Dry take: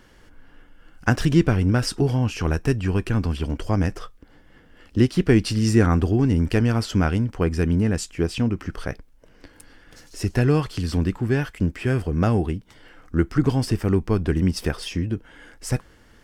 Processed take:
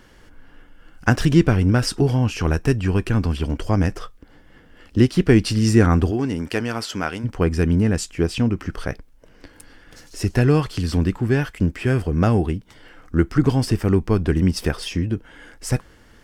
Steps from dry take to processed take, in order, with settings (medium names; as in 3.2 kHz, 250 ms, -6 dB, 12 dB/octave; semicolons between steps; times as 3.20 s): 6.10–7.23 s: high-pass 350 Hz -> 750 Hz 6 dB/octave; trim +2.5 dB